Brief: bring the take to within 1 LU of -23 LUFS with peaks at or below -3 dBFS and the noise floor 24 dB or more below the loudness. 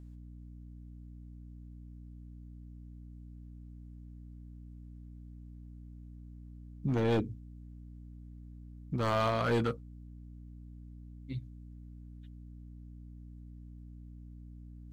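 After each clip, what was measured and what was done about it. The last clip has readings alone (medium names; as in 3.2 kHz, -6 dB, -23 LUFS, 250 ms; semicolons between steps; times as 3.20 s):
clipped samples 0.5%; clipping level -24.0 dBFS; hum 60 Hz; highest harmonic 300 Hz; hum level -46 dBFS; loudness -33.0 LUFS; peak level -24.0 dBFS; loudness target -23.0 LUFS
-> clip repair -24 dBFS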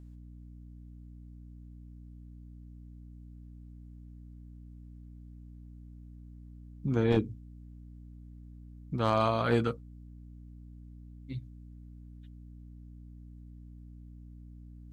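clipped samples 0.0%; hum 60 Hz; highest harmonic 300 Hz; hum level -46 dBFS
-> de-hum 60 Hz, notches 5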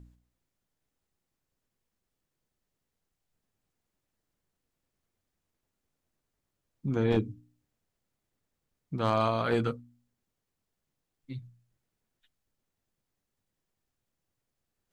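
hum not found; loudness -29.5 LUFS; peak level -15.0 dBFS; loudness target -23.0 LUFS
-> trim +6.5 dB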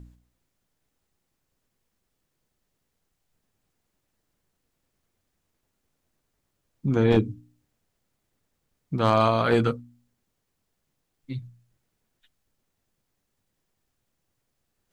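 loudness -23.5 LUFS; peak level -8.5 dBFS; noise floor -78 dBFS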